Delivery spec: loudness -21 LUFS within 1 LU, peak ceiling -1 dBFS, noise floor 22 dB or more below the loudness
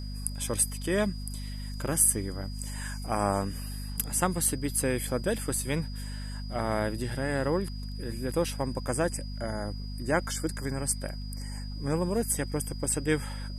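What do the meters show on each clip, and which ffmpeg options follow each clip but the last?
hum 50 Hz; highest harmonic 250 Hz; hum level -34 dBFS; steady tone 4.9 kHz; tone level -47 dBFS; loudness -30.5 LUFS; peak level -9.0 dBFS; loudness target -21.0 LUFS
-> -af "bandreject=f=50:t=h:w=6,bandreject=f=100:t=h:w=6,bandreject=f=150:t=h:w=6,bandreject=f=200:t=h:w=6,bandreject=f=250:t=h:w=6"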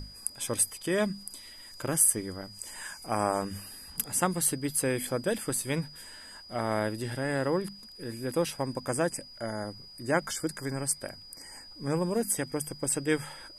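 hum not found; steady tone 4.9 kHz; tone level -47 dBFS
-> -af "bandreject=f=4900:w=30"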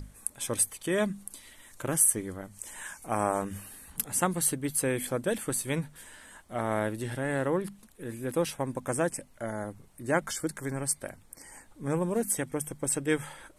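steady tone not found; loudness -30.5 LUFS; peak level -9.0 dBFS; loudness target -21.0 LUFS
-> -af "volume=2.99,alimiter=limit=0.891:level=0:latency=1"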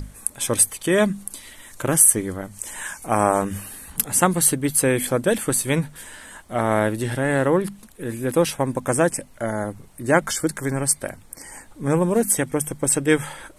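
loudness -21.0 LUFS; peak level -1.0 dBFS; noise floor -48 dBFS

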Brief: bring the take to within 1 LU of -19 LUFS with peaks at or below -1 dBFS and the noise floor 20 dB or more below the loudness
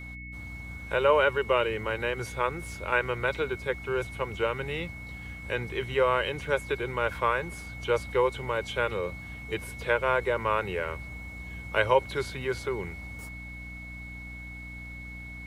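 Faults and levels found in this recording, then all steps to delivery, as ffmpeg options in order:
hum 60 Hz; highest harmonic 300 Hz; hum level -41 dBFS; steady tone 2.2 kHz; tone level -42 dBFS; loudness -29.0 LUFS; peak level -9.5 dBFS; loudness target -19.0 LUFS
-> -af "bandreject=f=60:t=h:w=4,bandreject=f=120:t=h:w=4,bandreject=f=180:t=h:w=4,bandreject=f=240:t=h:w=4,bandreject=f=300:t=h:w=4"
-af "bandreject=f=2200:w=30"
-af "volume=3.16,alimiter=limit=0.891:level=0:latency=1"

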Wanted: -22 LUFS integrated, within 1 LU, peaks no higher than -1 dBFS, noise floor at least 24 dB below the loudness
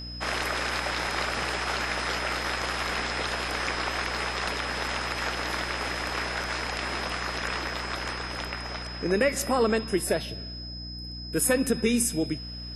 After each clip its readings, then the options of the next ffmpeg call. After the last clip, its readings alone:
hum 60 Hz; highest harmonic 300 Hz; hum level -37 dBFS; steady tone 5.1 kHz; tone level -39 dBFS; loudness -28.5 LUFS; peak level -11.5 dBFS; loudness target -22.0 LUFS
-> -af "bandreject=f=60:t=h:w=4,bandreject=f=120:t=h:w=4,bandreject=f=180:t=h:w=4,bandreject=f=240:t=h:w=4,bandreject=f=300:t=h:w=4"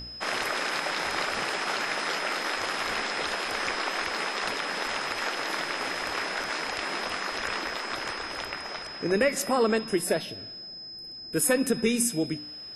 hum not found; steady tone 5.1 kHz; tone level -39 dBFS
-> -af "bandreject=f=5100:w=30"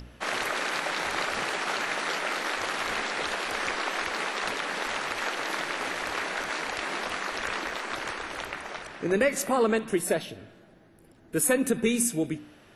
steady tone not found; loudness -29.0 LUFS; peak level -11.5 dBFS; loudness target -22.0 LUFS
-> -af "volume=2.24"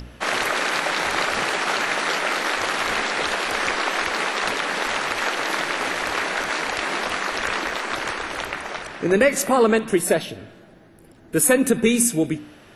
loudness -22.0 LUFS; peak level -4.5 dBFS; noise floor -48 dBFS

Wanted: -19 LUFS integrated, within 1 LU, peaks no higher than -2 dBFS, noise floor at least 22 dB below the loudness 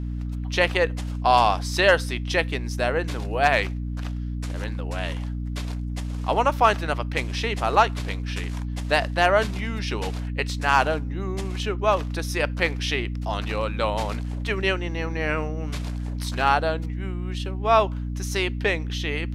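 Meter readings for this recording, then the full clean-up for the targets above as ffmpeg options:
hum 60 Hz; highest harmonic 300 Hz; hum level -27 dBFS; loudness -24.5 LUFS; peak level -5.5 dBFS; loudness target -19.0 LUFS
-> -af "bandreject=f=60:t=h:w=4,bandreject=f=120:t=h:w=4,bandreject=f=180:t=h:w=4,bandreject=f=240:t=h:w=4,bandreject=f=300:t=h:w=4"
-af "volume=1.88,alimiter=limit=0.794:level=0:latency=1"

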